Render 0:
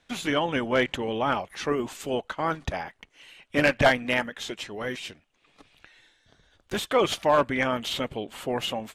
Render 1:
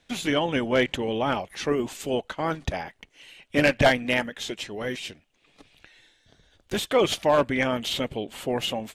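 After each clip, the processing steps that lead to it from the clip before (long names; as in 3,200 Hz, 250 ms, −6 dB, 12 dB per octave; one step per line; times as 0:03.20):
parametric band 1,200 Hz −5.5 dB 1.1 octaves
level +2.5 dB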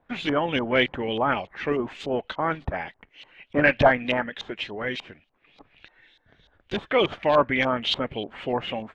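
auto-filter low-pass saw up 3.4 Hz 890–4,300 Hz
level −1 dB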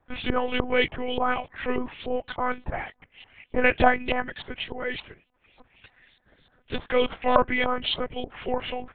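one-pitch LPC vocoder at 8 kHz 250 Hz
level −1 dB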